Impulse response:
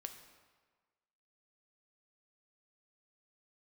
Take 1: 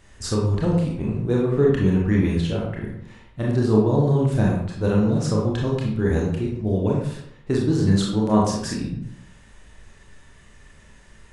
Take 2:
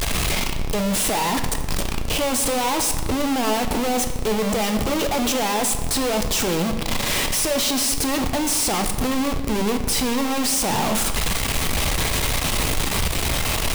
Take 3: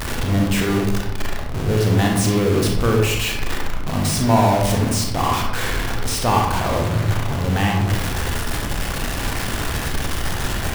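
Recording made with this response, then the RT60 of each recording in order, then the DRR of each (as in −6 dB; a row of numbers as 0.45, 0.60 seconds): 2; 0.75, 1.5, 1.0 seconds; −3.5, 6.0, 0.0 decibels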